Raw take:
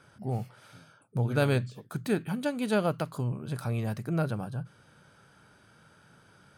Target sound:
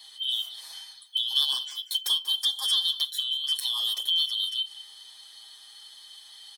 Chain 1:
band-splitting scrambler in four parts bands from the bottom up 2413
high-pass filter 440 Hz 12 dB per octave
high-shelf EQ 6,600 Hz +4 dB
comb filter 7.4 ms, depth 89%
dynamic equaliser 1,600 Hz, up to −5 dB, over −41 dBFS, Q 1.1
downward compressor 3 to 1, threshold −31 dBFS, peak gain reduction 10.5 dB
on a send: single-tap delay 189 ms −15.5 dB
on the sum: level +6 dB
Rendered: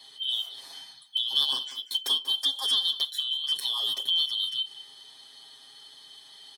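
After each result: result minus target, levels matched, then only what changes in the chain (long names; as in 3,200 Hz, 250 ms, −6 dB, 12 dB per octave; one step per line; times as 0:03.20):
500 Hz band +9.5 dB; 8,000 Hz band −3.5 dB
change: high-pass filter 890 Hz 12 dB per octave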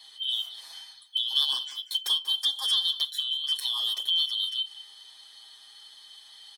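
8,000 Hz band −3.5 dB
change: high-shelf EQ 6,600 Hz +11.5 dB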